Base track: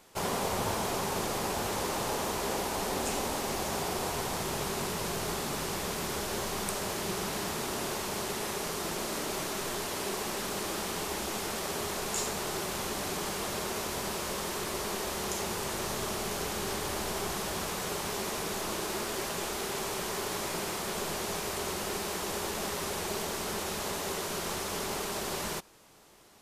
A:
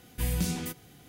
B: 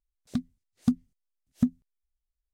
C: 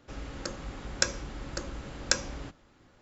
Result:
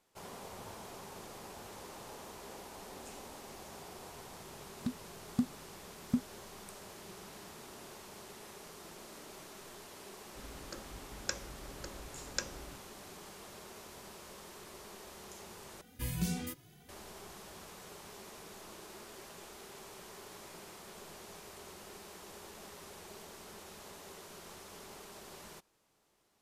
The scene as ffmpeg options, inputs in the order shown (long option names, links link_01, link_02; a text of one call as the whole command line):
ffmpeg -i bed.wav -i cue0.wav -i cue1.wav -i cue2.wav -filter_complex "[0:a]volume=-16.5dB[link_01];[1:a]asplit=2[link_02][link_03];[link_03]adelay=2.2,afreqshift=2[link_04];[link_02][link_04]amix=inputs=2:normalize=1[link_05];[link_01]asplit=2[link_06][link_07];[link_06]atrim=end=15.814[link_08];[link_05]atrim=end=1.08,asetpts=PTS-STARTPTS,volume=-3dB[link_09];[link_07]atrim=start=16.886[link_10];[2:a]atrim=end=2.53,asetpts=PTS-STARTPTS,volume=-7.5dB,afade=type=in:duration=0.004:curve=hsin,afade=type=out:start_time=2.526:duration=0.004:curve=hsin,adelay=4510[link_11];[3:a]atrim=end=3.01,asetpts=PTS-STARTPTS,volume=-10.5dB,afade=type=in:duration=0.004:curve=hsin,afade=type=out:start_time=3.006:duration=0.004:curve=hsin,adelay=10270[link_12];[link_08][link_09]acrossfade=duration=0.004:curve1=hsin:curve2=hsin[link_13];[link_13][link_10]acrossfade=duration=0.004:curve1=hsin:curve2=hsin[link_14];[link_14][link_11][link_12]amix=inputs=3:normalize=0" out.wav